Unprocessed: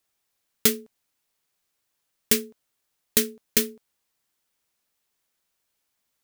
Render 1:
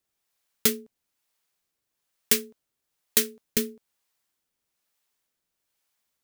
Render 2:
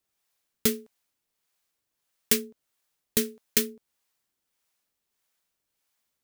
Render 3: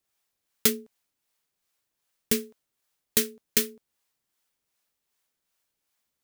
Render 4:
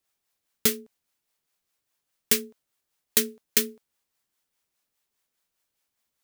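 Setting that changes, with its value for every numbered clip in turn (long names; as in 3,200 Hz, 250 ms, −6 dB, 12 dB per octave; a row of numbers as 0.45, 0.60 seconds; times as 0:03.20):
two-band tremolo in antiphase, speed: 1.1, 1.6, 2.6, 4.9 Hertz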